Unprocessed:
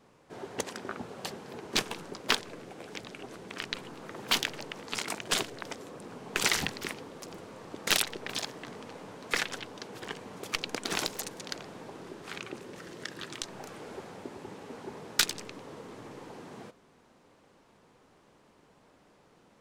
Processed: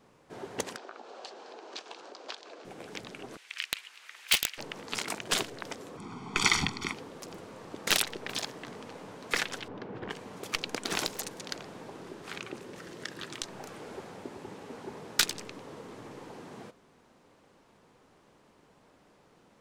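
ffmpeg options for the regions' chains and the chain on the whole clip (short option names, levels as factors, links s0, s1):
-filter_complex "[0:a]asettb=1/sr,asplit=3[s0][s1][s2];[s0]atrim=end=0.764[s3];[s1]atrim=start=0.76:end=2.65,asetpts=PTS-STARTPTS,afade=t=in:d=0.004:c=qsin,afade=t=out:st=1.886:d=0.004:c=qsin,acompressor=threshold=0.00891:ratio=3:attack=3.2:release=140:knee=1:detection=peak,highpass=f=350:w=0.5412,highpass=f=350:w=1.3066,equalizer=f=410:t=q:w=4:g=-3,equalizer=f=720:t=q:w=4:g=4,equalizer=f=2000:t=q:w=4:g=-5,equalizer=f=4300:t=q:w=4:g=3,lowpass=f=6800:w=0.5412,lowpass=f=6800:w=1.3066[s4];[s2]atrim=start=2.646[s5];[s3][s4]acrossfade=d=0.004:c1=hsin:c2=qsin[s6];[s6][s5]acrossfade=d=0.004:c1=qsin:c2=hsin,asettb=1/sr,asplit=3[s7][s8][s9];[s7]atrim=end=3.374[s10];[s8]atrim=start=3.37:end=4.58,asetpts=PTS-STARTPTS,afade=t=in:d=0.004:c=qsin,afade=t=out:st=1.206:d=0.004:c=qsin,highpass=f=2300:t=q:w=1.7,aeval=exprs='(mod(3.98*val(0)+1,2)-1)/3.98':c=same[s11];[s9]atrim=start=4.576[s12];[s10][s11]acrossfade=d=0.004:c1=hsin:c2=qsin[s13];[s13][s12]acrossfade=d=0.004:c1=qsin:c2=hsin,asettb=1/sr,asplit=3[s14][s15][s16];[s14]atrim=end=5.974[s17];[s15]atrim=start=5.97:end=6.94,asetpts=PTS-STARTPTS,afade=t=in:d=0.004:c=qsin,afade=t=out:st=0.966:d=0.004:c=qsin,lowpass=7000,aecho=1:1:0.9:0.91,atrim=end_sample=42777[s18];[s16]atrim=start=6.936[s19];[s17][s18]acrossfade=d=0.004:c1=hsin:c2=qsin[s20];[s20][s19]acrossfade=d=0.004:c1=qsin:c2=hsin,asettb=1/sr,asplit=3[s21][s22][s23];[s21]atrim=end=9.684[s24];[s22]atrim=start=9.68:end=10.1,asetpts=PTS-STARTPTS,afade=t=in:d=0.004:c=qsin,afade=t=out:st=0.416:d=0.004:c=qsin,lowpass=2100,lowshelf=f=420:g=7[s25];[s23]atrim=start=10.096[s26];[s24][s25]acrossfade=d=0.004:c1=hsin:c2=qsin[s27];[s27][s26]acrossfade=d=0.004:c1=qsin:c2=hsin"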